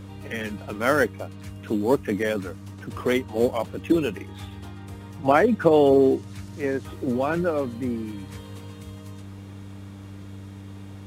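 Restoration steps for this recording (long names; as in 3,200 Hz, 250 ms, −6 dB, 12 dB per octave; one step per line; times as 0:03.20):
hum removal 98.2 Hz, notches 3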